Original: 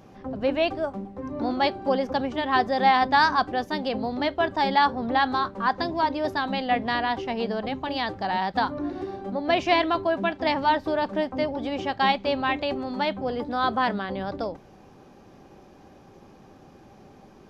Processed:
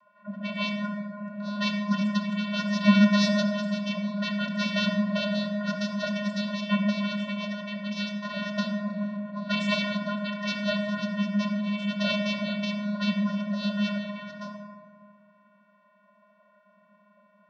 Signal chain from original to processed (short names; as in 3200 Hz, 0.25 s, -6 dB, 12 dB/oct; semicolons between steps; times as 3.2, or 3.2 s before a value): low-pass opened by the level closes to 1100 Hz, open at -19.5 dBFS; spectral gate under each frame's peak -15 dB weak; high shelf 4200 Hz +10 dB; vocoder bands 16, square 206 Hz; reverb RT60 1.9 s, pre-delay 4 ms, DRR 0 dB; gain +4 dB